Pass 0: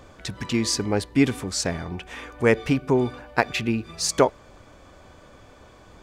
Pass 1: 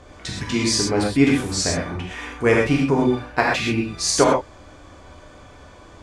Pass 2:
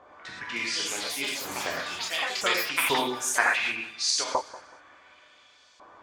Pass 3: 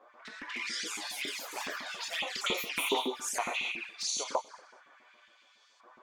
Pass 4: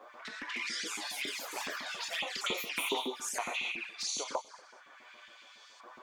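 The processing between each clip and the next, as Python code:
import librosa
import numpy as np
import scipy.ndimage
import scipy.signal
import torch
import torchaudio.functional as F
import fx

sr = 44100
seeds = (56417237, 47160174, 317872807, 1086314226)

y1 = scipy.signal.sosfilt(scipy.signal.butter(4, 11000.0, 'lowpass', fs=sr, output='sos'), x)
y1 = fx.rev_gated(y1, sr, seeds[0], gate_ms=150, shape='flat', drr_db=-3.0)
y2 = fx.filter_lfo_bandpass(y1, sr, shape='saw_up', hz=0.69, low_hz=900.0, high_hz=5200.0, q=1.5)
y2 = fx.echo_pitch(y2, sr, ms=386, semitones=6, count=3, db_per_echo=-3.0)
y2 = fx.echo_feedback(y2, sr, ms=188, feedback_pct=31, wet_db=-17.5)
y3 = fx.filter_lfo_highpass(y2, sr, shape='saw_up', hz=7.2, low_hz=200.0, high_hz=2500.0, q=1.4)
y3 = fx.low_shelf_res(y3, sr, hz=160.0, db=-8.5, q=1.5)
y3 = fx.env_flanger(y3, sr, rest_ms=10.1, full_db=-24.0)
y3 = y3 * 10.0 ** (-4.0 / 20.0)
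y4 = fx.band_squash(y3, sr, depth_pct=40)
y4 = y4 * 10.0 ** (-1.5 / 20.0)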